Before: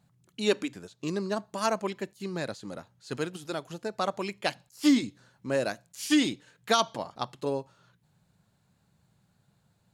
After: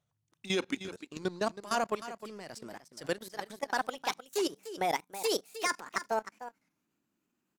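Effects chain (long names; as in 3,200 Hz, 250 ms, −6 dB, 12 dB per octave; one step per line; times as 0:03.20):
gliding playback speed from 84% → 178%
low-shelf EQ 280 Hz −6 dB
output level in coarse steps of 16 dB
leveller curve on the samples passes 1
single-tap delay 308 ms −12.5 dB
wow of a warped record 33 1/3 rpm, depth 160 cents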